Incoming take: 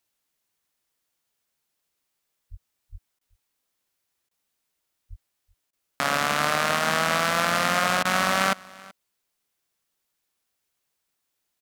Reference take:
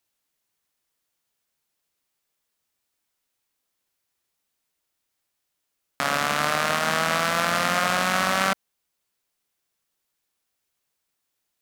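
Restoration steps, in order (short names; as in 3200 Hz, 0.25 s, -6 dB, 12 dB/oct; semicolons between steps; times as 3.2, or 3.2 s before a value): 2.5–2.62 HPF 140 Hz 24 dB/oct; 2.91–3.03 HPF 140 Hz 24 dB/oct; 5.09–5.21 HPF 140 Hz 24 dB/oct; interpolate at 3.19/4.29/5.71/8.03, 19 ms; inverse comb 0.38 s -23 dB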